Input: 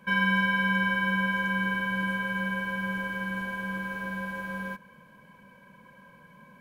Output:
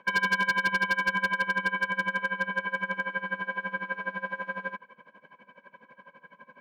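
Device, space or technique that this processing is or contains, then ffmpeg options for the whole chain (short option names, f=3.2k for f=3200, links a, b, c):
helicopter radio: -af "highpass=360,lowpass=2.7k,aeval=exprs='val(0)*pow(10,-19*(0.5-0.5*cos(2*PI*12*n/s))/20)':c=same,asoftclip=type=hard:threshold=-27dB,volume=7.5dB"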